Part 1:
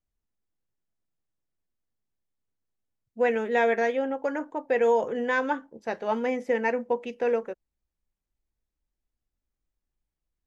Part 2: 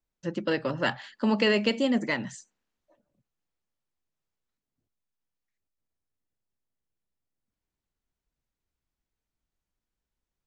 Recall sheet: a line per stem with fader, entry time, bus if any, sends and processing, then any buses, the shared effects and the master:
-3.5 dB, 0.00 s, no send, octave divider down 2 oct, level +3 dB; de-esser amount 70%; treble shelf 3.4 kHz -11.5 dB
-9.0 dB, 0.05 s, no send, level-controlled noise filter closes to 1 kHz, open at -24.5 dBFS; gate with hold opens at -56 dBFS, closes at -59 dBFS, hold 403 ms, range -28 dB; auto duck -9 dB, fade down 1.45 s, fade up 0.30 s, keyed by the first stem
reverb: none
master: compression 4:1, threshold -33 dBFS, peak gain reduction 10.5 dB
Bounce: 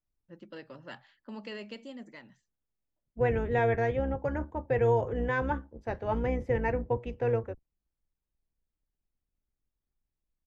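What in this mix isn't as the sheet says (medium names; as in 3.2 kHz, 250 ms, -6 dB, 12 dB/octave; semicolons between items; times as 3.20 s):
stem 2 -9.0 dB -> -18.0 dB; master: missing compression 4:1, threshold -33 dBFS, peak gain reduction 10.5 dB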